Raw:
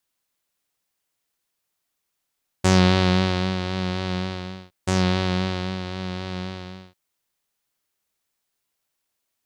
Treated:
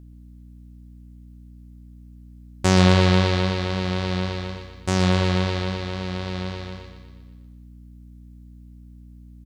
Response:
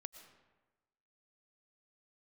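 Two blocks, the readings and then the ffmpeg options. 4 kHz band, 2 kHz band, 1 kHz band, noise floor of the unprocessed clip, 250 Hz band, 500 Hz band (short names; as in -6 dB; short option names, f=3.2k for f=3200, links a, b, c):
+1.0 dB, +1.0 dB, +1.0 dB, -79 dBFS, +0.5 dB, +2.0 dB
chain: -filter_complex "[0:a]aecho=1:1:120|240|360|480|600|720|840:0.335|0.194|0.113|0.0654|0.0379|0.022|0.0128,aeval=exprs='val(0)+0.00708*(sin(2*PI*60*n/s)+sin(2*PI*2*60*n/s)/2+sin(2*PI*3*60*n/s)/3+sin(2*PI*4*60*n/s)/4+sin(2*PI*5*60*n/s)/5)':c=same,asplit=2[a][b];[1:a]atrim=start_sample=2205,adelay=129[c];[b][c]afir=irnorm=-1:irlink=0,volume=-6.5dB[d];[a][d]amix=inputs=2:normalize=0"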